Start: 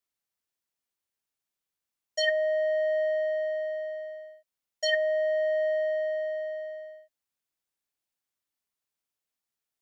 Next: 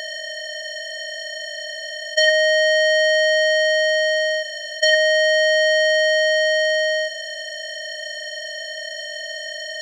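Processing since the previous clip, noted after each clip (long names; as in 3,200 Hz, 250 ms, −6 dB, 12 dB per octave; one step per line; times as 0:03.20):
compressor on every frequency bin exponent 0.2
level +7.5 dB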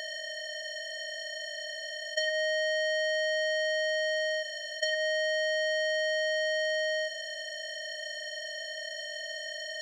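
downward compressor 6 to 1, threshold −19 dBFS, peak gain reduction 8 dB
level −8 dB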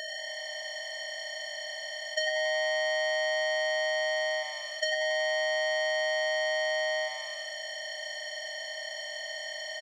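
echo with shifted repeats 93 ms, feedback 46%, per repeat +140 Hz, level −11.5 dB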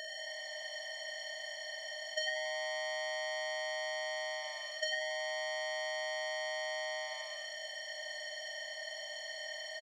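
double-tracking delay 49 ms −8 dB
level −6 dB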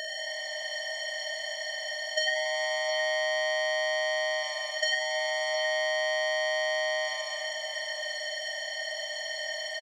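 single-tap delay 712 ms −9.5 dB
level +8 dB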